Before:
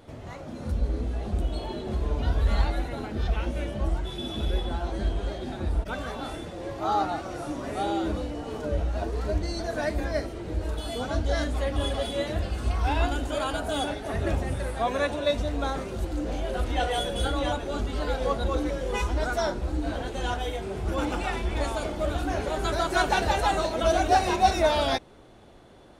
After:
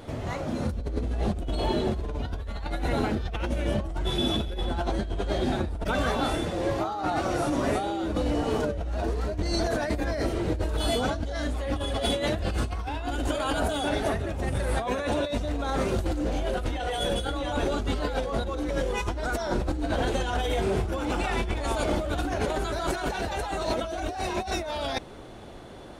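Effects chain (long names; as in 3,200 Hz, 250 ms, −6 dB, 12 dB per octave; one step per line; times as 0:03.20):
in parallel at +2 dB: brickwall limiter −18 dBFS, peak gain reduction 9 dB
on the sum: compressor whose output falls as the input rises −25 dBFS, ratio −1
level −3 dB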